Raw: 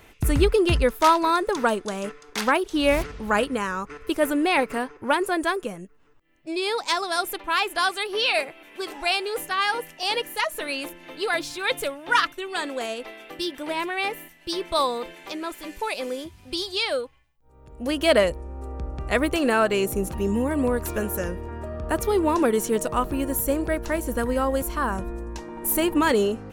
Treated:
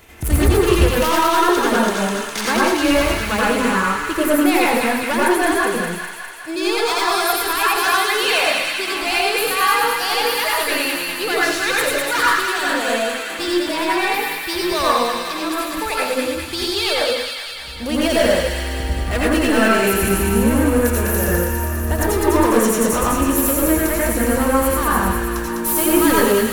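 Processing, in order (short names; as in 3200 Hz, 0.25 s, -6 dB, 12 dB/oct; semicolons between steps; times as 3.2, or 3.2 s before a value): block floating point 7-bit; high shelf 4600 Hz +6 dB; in parallel at -3 dB: level quantiser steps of 10 dB; on the sum: soft clip -17.5 dBFS, distortion -9 dB; on a send: thin delay 0.203 s, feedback 69%, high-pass 1600 Hz, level -3 dB; on the sum: plate-style reverb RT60 0.62 s, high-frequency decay 0.35×, pre-delay 75 ms, DRR -5.5 dB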